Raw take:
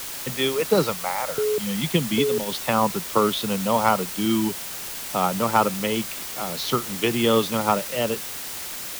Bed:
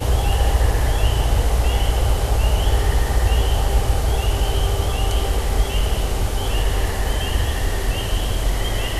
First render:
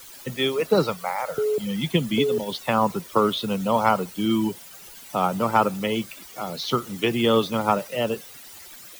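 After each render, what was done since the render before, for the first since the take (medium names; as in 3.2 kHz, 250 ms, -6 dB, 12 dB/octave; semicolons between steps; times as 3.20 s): noise reduction 14 dB, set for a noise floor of -34 dBFS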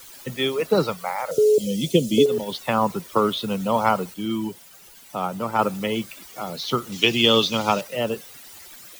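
1.31–2.26 s: FFT filter 160 Hz 0 dB, 560 Hz +9 dB, 840 Hz -15 dB, 1.6 kHz -18 dB, 2.6 kHz -2 dB, 6.4 kHz +10 dB, 16 kHz +1 dB; 4.14–5.59 s: gain -4 dB; 6.92–7.81 s: high-order bell 4.1 kHz +10.5 dB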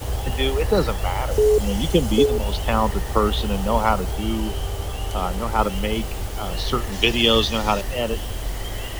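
add bed -7.5 dB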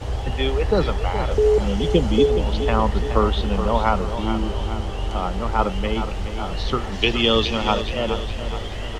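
distance through air 100 m; on a send: feedback delay 421 ms, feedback 53%, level -10 dB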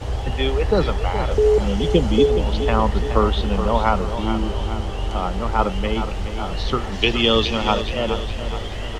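trim +1 dB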